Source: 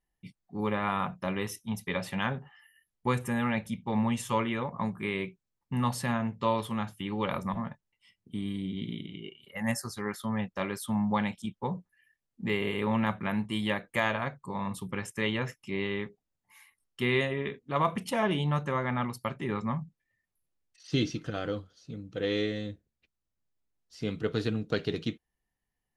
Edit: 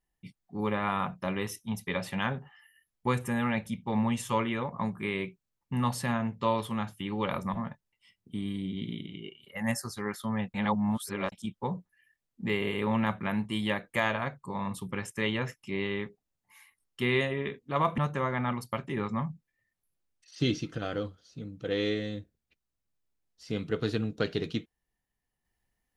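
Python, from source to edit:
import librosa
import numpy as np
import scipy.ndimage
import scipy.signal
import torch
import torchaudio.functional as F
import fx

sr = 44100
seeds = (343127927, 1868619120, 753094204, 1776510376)

y = fx.edit(x, sr, fx.reverse_span(start_s=10.54, length_s=0.78),
    fx.cut(start_s=17.98, length_s=0.52), tone=tone)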